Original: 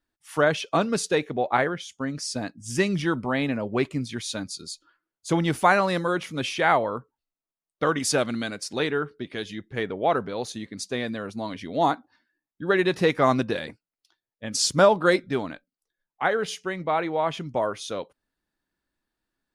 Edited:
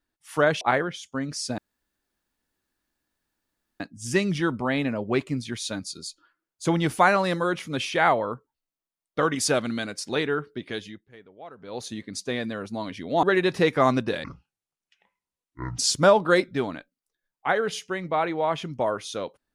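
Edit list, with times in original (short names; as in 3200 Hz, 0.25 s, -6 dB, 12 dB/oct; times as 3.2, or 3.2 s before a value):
0.61–1.47 cut
2.44 insert room tone 2.22 s
9.39–10.53 dip -20.5 dB, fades 0.32 s
11.87–12.65 cut
13.66–14.54 speed 57%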